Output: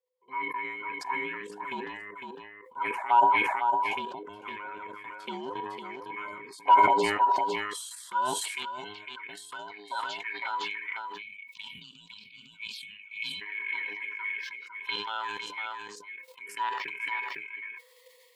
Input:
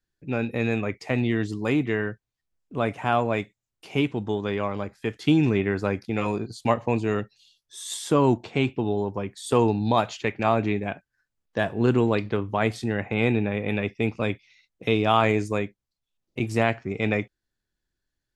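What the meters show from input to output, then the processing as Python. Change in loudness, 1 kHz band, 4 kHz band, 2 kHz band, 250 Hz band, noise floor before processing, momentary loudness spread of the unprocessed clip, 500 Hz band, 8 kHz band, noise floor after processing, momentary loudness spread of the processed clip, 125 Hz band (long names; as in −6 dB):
−4.5 dB, +3.0 dB, −1.5 dB, −1.5 dB, −19.5 dB, −85 dBFS, 11 LU, −13.5 dB, −1.5 dB, −57 dBFS, 19 LU, below −25 dB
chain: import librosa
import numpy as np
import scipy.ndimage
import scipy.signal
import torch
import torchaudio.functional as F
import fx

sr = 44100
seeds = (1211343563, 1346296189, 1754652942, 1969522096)

p1 = fx.band_invert(x, sr, width_hz=500)
p2 = fx.level_steps(p1, sr, step_db=11)
p3 = fx.env_phaser(p2, sr, low_hz=250.0, high_hz=2200.0, full_db=-23.5)
p4 = fx.low_shelf(p3, sr, hz=140.0, db=11.5)
p5 = fx.small_body(p4, sr, hz=(500.0, 970.0, 2200.0), ring_ms=70, db=15)
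p6 = p5 + fx.echo_single(p5, sr, ms=505, db=-6.5, dry=0)
p7 = fx.filter_sweep_highpass(p6, sr, from_hz=810.0, to_hz=1800.0, start_s=7.35, end_s=8.38, q=1.8)
p8 = 10.0 ** (-5.5 / 20.0) * np.tanh(p7 / 10.0 ** (-5.5 / 20.0))
p9 = fx.peak_eq(p8, sr, hz=6100.0, db=-7.5, octaves=0.73)
p10 = fx.spec_box(p9, sr, start_s=11.22, length_s=2.19, low_hz=260.0, high_hz=2200.0, gain_db=-30)
p11 = fx.sustainer(p10, sr, db_per_s=35.0)
y = F.gain(torch.from_numpy(p11), -4.0).numpy()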